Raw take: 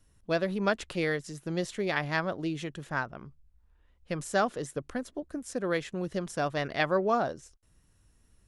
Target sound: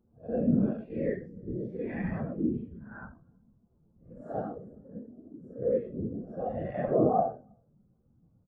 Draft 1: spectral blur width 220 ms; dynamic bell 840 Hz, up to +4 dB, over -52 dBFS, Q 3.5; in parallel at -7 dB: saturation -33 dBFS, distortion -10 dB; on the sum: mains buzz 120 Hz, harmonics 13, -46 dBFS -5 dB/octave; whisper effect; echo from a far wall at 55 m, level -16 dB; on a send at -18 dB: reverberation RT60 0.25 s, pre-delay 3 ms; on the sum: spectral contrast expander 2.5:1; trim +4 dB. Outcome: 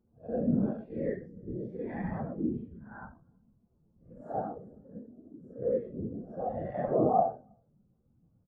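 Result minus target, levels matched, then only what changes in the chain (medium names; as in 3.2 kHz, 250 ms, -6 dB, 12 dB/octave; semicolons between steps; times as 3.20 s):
1 kHz band +3.0 dB
change: dynamic bell 2.6 kHz, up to +4 dB, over -52 dBFS, Q 3.5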